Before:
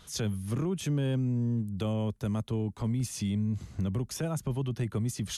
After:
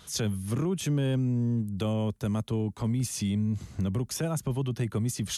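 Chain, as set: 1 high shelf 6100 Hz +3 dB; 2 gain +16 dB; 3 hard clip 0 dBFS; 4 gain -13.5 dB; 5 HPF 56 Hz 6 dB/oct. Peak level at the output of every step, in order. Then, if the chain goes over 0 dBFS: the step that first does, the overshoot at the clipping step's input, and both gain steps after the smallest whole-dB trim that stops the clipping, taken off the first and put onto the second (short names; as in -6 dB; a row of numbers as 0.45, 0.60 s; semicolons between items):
-21.5, -5.5, -5.5, -19.0, -19.0 dBFS; no overload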